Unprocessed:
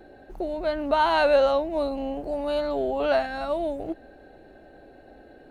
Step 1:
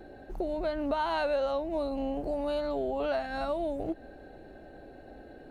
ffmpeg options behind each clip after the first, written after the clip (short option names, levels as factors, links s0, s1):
-af "highshelf=f=3900:g=-7,acompressor=threshold=0.0316:ratio=3,bass=f=250:g=3,treble=f=4000:g=6"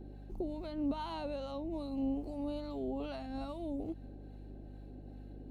-filter_complex "[0:a]acrossover=split=850[s0][s1];[s0]aeval=exprs='val(0)*(1-0.5/2+0.5/2*cos(2*PI*2.4*n/s))':c=same[s2];[s1]aeval=exprs='val(0)*(1-0.5/2-0.5/2*cos(2*PI*2.4*n/s))':c=same[s3];[s2][s3]amix=inputs=2:normalize=0,equalizer=f=250:t=o:w=0.67:g=8,equalizer=f=630:t=o:w=0.67:g=-6,equalizer=f=1600:t=o:w=0.67:g=-11,aeval=exprs='val(0)+0.00708*(sin(2*PI*50*n/s)+sin(2*PI*2*50*n/s)/2+sin(2*PI*3*50*n/s)/3+sin(2*PI*4*50*n/s)/4+sin(2*PI*5*50*n/s)/5)':c=same,volume=0.562"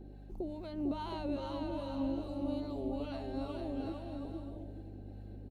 -af "aecho=1:1:450|720|882|979.2|1038:0.631|0.398|0.251|0.158|0.1,volume=0.841"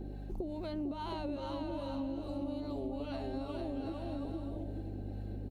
-af "acompressor=threshold=0.00708:ratio=6,volume=2.37"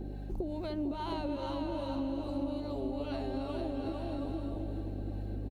-af "aecho=1:1:298|596|894|1192|1490|1788|2086:0.282|0.163|0.0948|0.055|0.0319|0.0185|0.0107,volume=1.33"